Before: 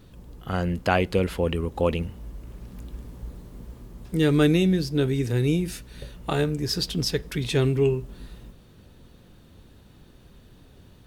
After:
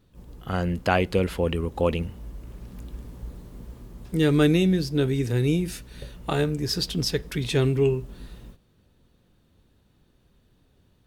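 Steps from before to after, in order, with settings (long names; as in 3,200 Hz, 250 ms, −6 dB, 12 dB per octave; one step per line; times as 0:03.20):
noise gate −45 dBFS, range −11 dB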